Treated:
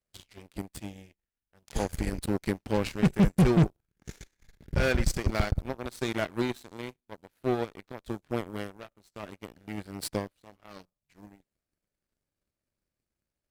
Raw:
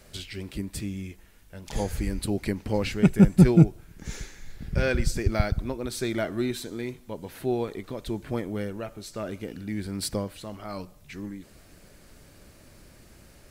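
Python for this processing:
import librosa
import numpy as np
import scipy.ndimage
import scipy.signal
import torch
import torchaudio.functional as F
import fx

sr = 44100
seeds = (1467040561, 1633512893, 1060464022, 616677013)

y = 10.0 ** (-15.0 / 20.0) * np.tanh(x / 10.0 ** (-15.0 / 20.0))
y = fx.cheby_harmonics(y, sr, harmonics=(7,), levels_db=(-17,), full_scale_db=-15.0)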